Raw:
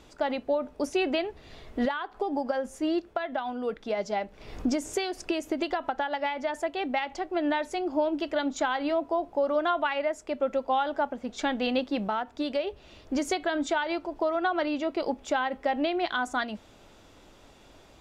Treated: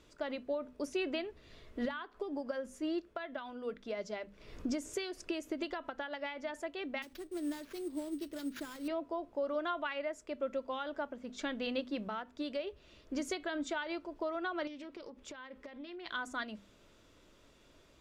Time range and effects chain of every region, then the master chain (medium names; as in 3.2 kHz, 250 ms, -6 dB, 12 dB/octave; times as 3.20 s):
7.02–8.88 s: CVSD coder 64 kbps + high-order bell 1.3 kHz -11 dB 2.8 oct + sample-rate reducer 8.5 kHz
14.67–16.06 s: band-stop 670 Hz, Q 7.3 + compression 16:1, threshold -34 dBFS + loudspeaker Doppler distortion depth 0.2 ms
whole clip: peaking EQ 790 Hz -12.5 dB 0.27 oct; hum notches 50/100/150/200/250 Hz; trim -8 dB